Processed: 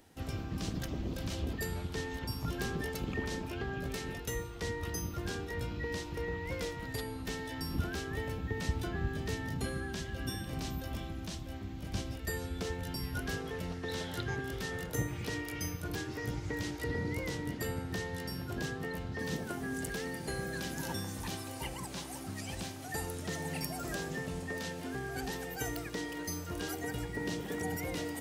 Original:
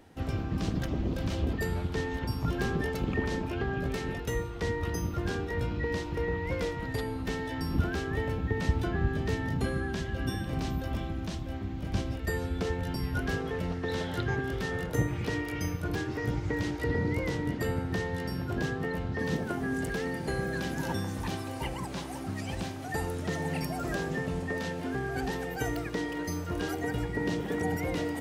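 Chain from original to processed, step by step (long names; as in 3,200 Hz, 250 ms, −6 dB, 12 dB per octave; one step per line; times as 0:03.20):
high-shelf EQ 3,800 Hz +11.5 dB
level −6.5 dB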